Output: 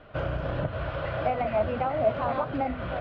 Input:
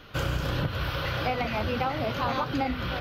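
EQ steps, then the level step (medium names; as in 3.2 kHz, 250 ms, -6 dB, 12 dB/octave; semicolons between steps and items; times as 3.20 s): low-pass 2.2 kHz 12 dB/octave; distance through air 80 m; peaking EQ 640 Hz +13.5 dB 0.34 oct; -2.5 dB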